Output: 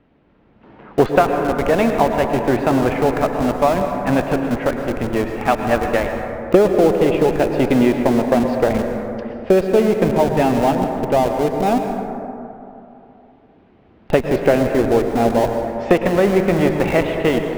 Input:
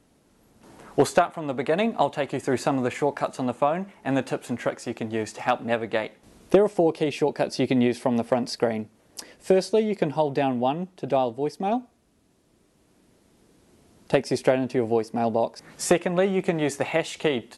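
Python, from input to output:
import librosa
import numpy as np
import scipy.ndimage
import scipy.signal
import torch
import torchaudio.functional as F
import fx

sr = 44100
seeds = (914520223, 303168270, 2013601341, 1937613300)

p1 = scipy.signal.sosfilt(scipy.signal.butter(4, 2900.0, 'lowpass', fs=sr, output='sos'), x)
p2 = fx.schmitt(p1, sr, flips_db=-26.5)
p3 = p1 + F.gain(torch.from_numpy(p2), -5.0).numpy()
p4 = fx.rev_plate(p3, sr, seeds[0], rt60_s=3.0, hf_ratio=0.3, predelay_ms=95, drr_db=4.5)
y = F.gain(torch.from_numpy(p4), 4.5).numpy()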